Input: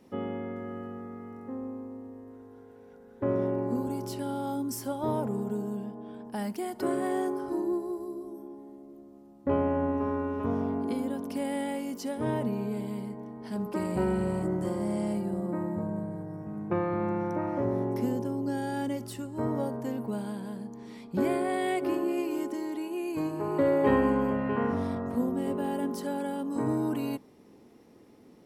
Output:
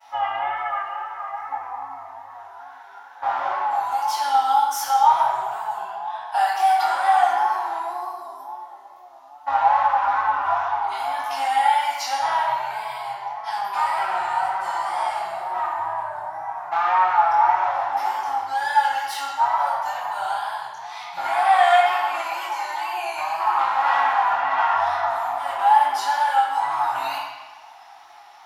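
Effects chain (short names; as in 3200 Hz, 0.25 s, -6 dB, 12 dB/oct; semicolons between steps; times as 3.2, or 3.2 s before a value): one-sided clip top -25.5 dBFS; compressor 4:1, threshold -30 dBFS, peak gain reduction 7.5 dB; chorus 0.51 Hz, delay 20 ms, depth 3.7 ms; wow and flutter 92 cents; elliptic high-pass 760 Hz, stop band 40 dB; reverb RT60 1.1 s, pre-delay 3 ms, DRR -13 dB; gain +7.5 dB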